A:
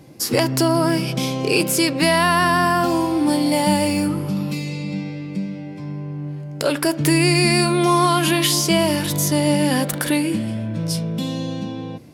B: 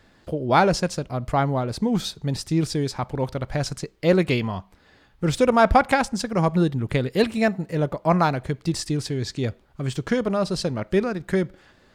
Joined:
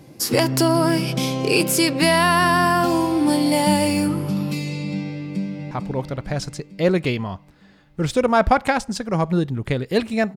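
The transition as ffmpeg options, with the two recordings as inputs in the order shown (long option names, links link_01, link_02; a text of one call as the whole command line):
ffmpeg -i cue0.wav -i cue1.wav -filter_complex "[0:a]apad=whole_dur=10.36,atrim=end=10.36,atrim=end=5.712[link_01];[1:a]atrim=start=2.948:end=7.6[link_02];[link_01][link_02]acrossfade=duration=0.004:curve1=hsin:curve2=hsin,asplit=2[link_03][link_04];[link_04]afade=type=in:start_time=5.14:duration=0.01,afade=type=out:start_time=5.71:duration=0.01,aecho=0:1:450|900|1350|1800|2250|2700|3150:0.446684|0.245676|0.135122|0.074317|0.0408743|0.0224809|0.0123645[link_05];[link_03][link_05]amix=inputs=2:normalize=0" out.wav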